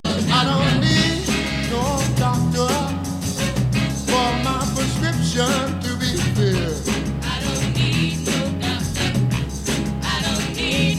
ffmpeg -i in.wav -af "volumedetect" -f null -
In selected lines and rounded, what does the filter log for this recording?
mean_volume: -20.1 dB
max_volume: -3.9 dB